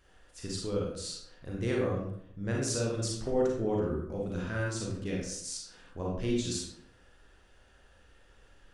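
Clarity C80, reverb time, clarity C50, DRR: 5.5 dB, 0.65 s, 1.0 dB, -3.5 dB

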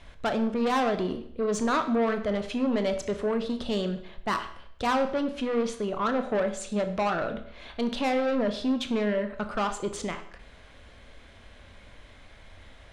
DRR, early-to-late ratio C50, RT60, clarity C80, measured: 7.5 dB, 11.0 dB, 0.65 s, 14.0 dB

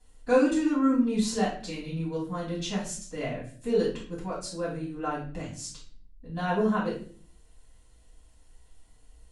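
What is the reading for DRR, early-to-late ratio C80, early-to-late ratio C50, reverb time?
-8.5 dB, 11.0 dB, 5.5 dB, 0.45 s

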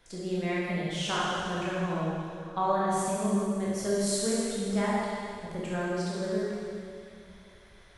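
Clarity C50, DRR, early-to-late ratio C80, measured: -3.5 dB, -7.5 dB, -1.5 dB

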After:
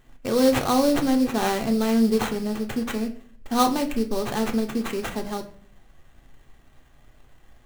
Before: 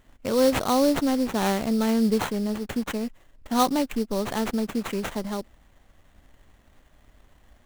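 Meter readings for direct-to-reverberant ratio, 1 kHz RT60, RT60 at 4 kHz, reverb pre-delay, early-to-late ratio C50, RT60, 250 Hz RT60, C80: 4.0 dB, 0.45 s, 0.35 s, 3 ms, 13.5 dB, 0.50 s, 0.65 s, 17.0 dB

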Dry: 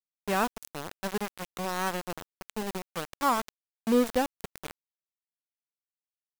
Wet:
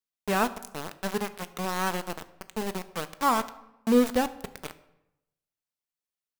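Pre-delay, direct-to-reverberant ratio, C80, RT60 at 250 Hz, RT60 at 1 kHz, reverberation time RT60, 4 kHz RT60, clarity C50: 5 ms, 11.0 dB, 18.5 dB, 0.95 s, 0.90 s, 0.90 s, 0.60 s, 16.0 dB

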